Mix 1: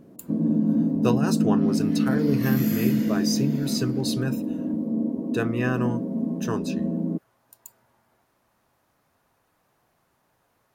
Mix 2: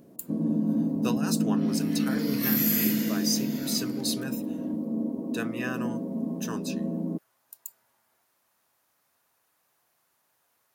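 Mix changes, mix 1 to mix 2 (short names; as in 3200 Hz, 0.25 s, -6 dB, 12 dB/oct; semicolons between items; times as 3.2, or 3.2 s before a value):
speech -6.0 dB; first sound: add low shelf 160 Hz +6.5 dB; master: add tilt +3 dB/oct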